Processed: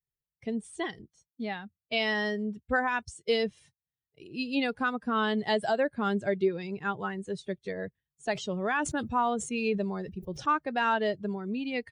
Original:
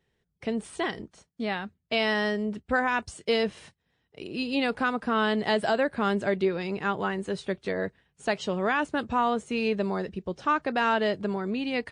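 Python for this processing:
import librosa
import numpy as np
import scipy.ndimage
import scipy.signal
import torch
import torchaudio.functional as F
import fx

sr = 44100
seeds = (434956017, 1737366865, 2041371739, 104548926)

y = fx.bin_expand(x, sr, power=1.5)
y = fx.sustainer(y, sr, db_per_s=92.0, at=(8.32, 10.46))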